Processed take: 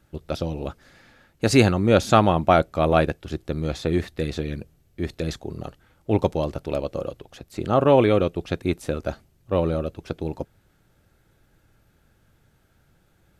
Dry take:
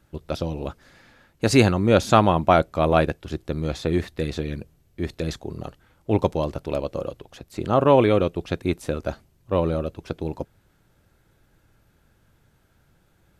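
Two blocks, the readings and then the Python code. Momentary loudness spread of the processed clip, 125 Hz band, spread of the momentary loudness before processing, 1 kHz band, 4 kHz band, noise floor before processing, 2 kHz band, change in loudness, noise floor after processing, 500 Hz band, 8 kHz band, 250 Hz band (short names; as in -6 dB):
17 LU, 0.0 dB, 17 LU, -0.5 dB, 0.0 dB, -63 dBFS, 0.0 dB, 0.0 dB, -63 dBFS, 0.0 dB, 0.0 dB, 0.0 dB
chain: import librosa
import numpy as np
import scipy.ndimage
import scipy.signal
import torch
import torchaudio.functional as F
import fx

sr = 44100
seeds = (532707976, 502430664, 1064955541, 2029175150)

y = fx.notch(x, sr, hz=1000.0, q=13.0)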